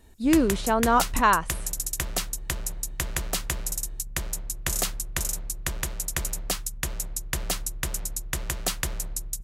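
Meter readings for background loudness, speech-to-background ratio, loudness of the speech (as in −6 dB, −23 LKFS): −30.0 LKFS, 7.0 dB, −23.0 LKFS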